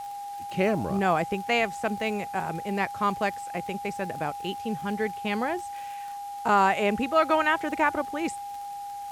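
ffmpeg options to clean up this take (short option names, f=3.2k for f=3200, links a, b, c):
-af "adeclick=t=4,bandreject=f=810:w=30,afwtdn=0.0025"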